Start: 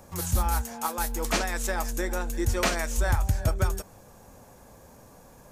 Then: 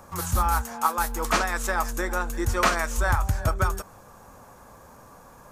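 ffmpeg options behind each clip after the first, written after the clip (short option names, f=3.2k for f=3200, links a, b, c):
-af "equalizer=f=1.2k:t=o:w=0.89:g=10.5"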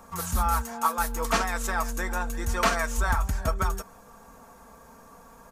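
-af "aecho=1:1:4.4:0.62,volume=-3dB"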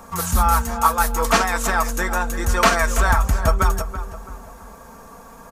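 -filter_complex "[0:a]asplit=2[a][b];[b]adelay=332,lowpass=f=2.1k:p=1,volume=-11dB,asplit=2[c][d];[d]adelay=332,lowpass=f=2.1k:p=1,volume=0.38,asplit=2[e][f];[f]adelay=332,lowpass=f=2.1k:p=1,volume=0.38,asplit=2[g][h];[h]adelay=332,lowpass=f=2.1k:p=1,volume=0.38[i];[a][c][e][g][i]amix=inputs=5:normalize=0,volume=8dB"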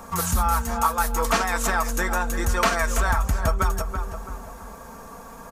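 -af "acompressor=threshold=-23dB:ratio=2,volume=1dB"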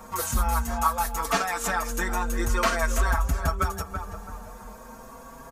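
-filter_complex "[0:a]asplit=2[a][b];[b]adelay=6,afreqshift=0.42[c];[a][c]amix=inputs=2:normalize=1"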